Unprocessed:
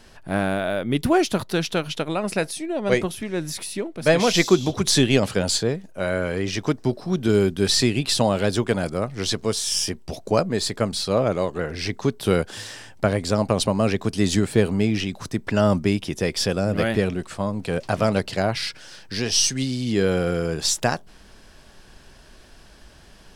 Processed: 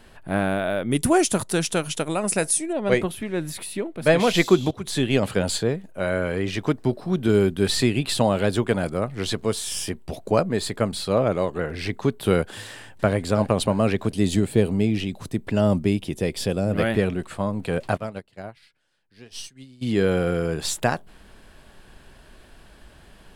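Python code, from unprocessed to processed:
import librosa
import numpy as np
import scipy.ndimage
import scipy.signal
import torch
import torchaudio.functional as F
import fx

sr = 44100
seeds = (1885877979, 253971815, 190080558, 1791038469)

y = fx.band_shelf(x, sr, hz=7400.0, db=14.5, octaves=1.2, at=(0.91, 2.73))
y = fx.echo_throw(y, sr, start_s=12.66, length_s=0.47, ms=330, feedback_pct=55, wet_db=-13.5)
y = fx.peak_eq(y, sr, hz=1400.0, db=-7.5, octaves=1.4, at=(14.07, 16.71))
y = fx.upward_expand(y, sr, threshold_db=-29.0, expansion=2.5, at=(17.96, 19.81), fade=0.02)
y = fx.edit(y, sr, fx.fade_in_from(start_s=4.71, length_s=0.62, floor_db=-13.5), tone=tone)
y = fx.peak_eq(y, sr, hz=5600.0, db=-10.5, octaves=0.62)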